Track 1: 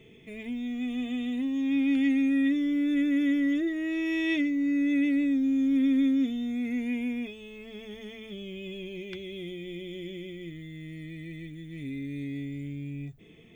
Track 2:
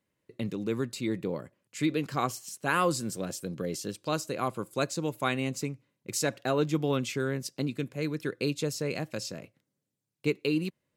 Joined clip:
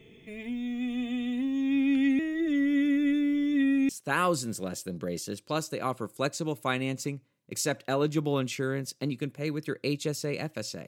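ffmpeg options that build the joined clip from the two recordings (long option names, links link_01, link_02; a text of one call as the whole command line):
ffmpeg -i cue0.wav -i cue1.wav -filter_complex "[0:a]apad=whole_dur=10.87,atrim=end=10.87,asplit=2[link_01][link_02];[link_01]atrim=end=2.192[link_03];[link_02]atrim=start=2.188:end=3.892,asetpts=PTS-STARTPTS,areverse[link_04];[1:a]atrim=start=2.458:end=9.44[link_05];[link_03][link_04]acrossfade=duration=0.004:curve1=hsin:curve2=hsin[link_06];[link_06][link_05]acrossfade=duration=0.004:curve1=hsin:curve2=hsin" out.wav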